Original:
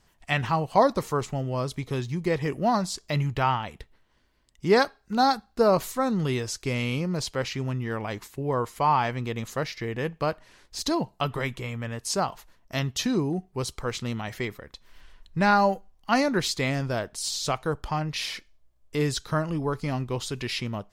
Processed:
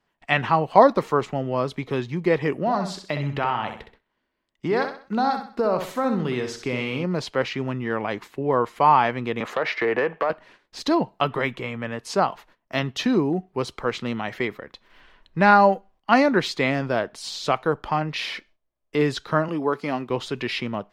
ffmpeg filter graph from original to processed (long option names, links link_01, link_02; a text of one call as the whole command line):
ffmpeg -i in.wav -filter_complex "[0:a]asettb=1/sr,asplit=3[link_01][link_02][link_03];[link_01]atrim=end=2.594[link_04];[link_02]atrim=start=2.59:end=7.04,asetpts=PTS-STARTPTS,afade=type=in:duration=0.004:curve=qsin,afade=type=out:start_time=4.446:duration=0.004:curve=qsin,acompressor=threshold=-25dB:ratio=4:attack=3.2:release=140:knee=1:detection=peak,aecho=1:1:64|128|192|256:0.422|0.152|0.0547|0.0197,atrim=end_sample=196245[link_05];[link_03]atrim=start=7.036[link_06];[link_04][link_05]acrossfade=duration=0.004:curve1=hsin:curve2=qsin[link_07];[link_07][link_06]acrossfade=duration=0.004:curve1=qsin:curve2=hsin,asettb=1/sr,asplit=3[link_08][link_09][link_10];[link_08]atrim=end=9.404[link_11];[link_09]atrim=start=9.4:end=10.3,asetpts=PTS-STARTPTS,afade=type=in:duration=0.004:curve=qsin,afade=type=out:start_time=0.896:duration=0.004:curve=qsin,acrossover=split=380 2400:gain=0.158 1 0.251[link_12][link_13][link_14];[link_12][link_13][link_14]amix=inputs=3:normalize=0,acompressor=threshold=-33dB:ratio=16:attack=3.2:release=140:knee=1:detection=peak,aeval=exprs='0.1*sin(PI/2*2.51*val(0)/0.1)':channel_layout=same[link_15];[link_10]atrim=start=10.296[link_16];[link_11][link_15]acrossfade=duration=0.004:curve1=hsin:curve2=qsin[link_17];[link_17][link_16]acrossfade=duration=0.004:curve1=qsin:curve2=hsin,asettb=1/sr,asplit=3[link_18][link_19][link_20];[link_18]atrim=end=19.484[link_21];[link_19]atrim=start=19.48:end=20.1,asetpts=PTS-STARTPTS,afade=type=in:duration=0.004:curve=qsin,afade=type=out:start_time=0.616:duration=0.004:curve=qsin,highpass=210,highshelf=frequency=9400:gain=6[link_22];[link_20]atrim=start=20.096[link_23];[link_21][link_22]acrossfade=duration=0.004:curve1=hsin:curve2=qsin[link_24];[link_24][link_23]acrossfade=duration=0.004:curve1=qsin:curve2=hsin,agate=range=-12dB:threshold=-52dB:ratio=16:detection=peak,acrossover=split=170 3700:gain=0.2 1 0.158[link_25][link_26][link_27];[link_25][link_26][link_27]amix=inputs=3:normalize=0,volume=6dB" out.wav